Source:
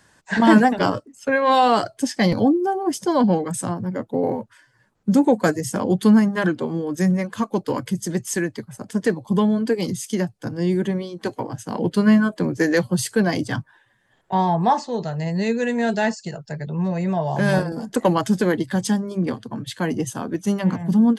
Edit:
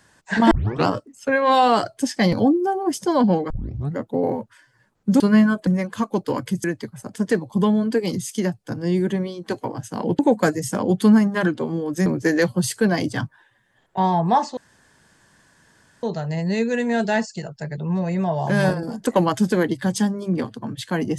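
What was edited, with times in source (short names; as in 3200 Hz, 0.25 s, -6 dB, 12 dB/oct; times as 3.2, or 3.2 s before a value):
0.51 tape start 0.36 s
3.5 tape start 0.47 s
5.2–7.07 swap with 11.94–12.41
8.04–8.39 cut
14.92 insert room tone 1.46 s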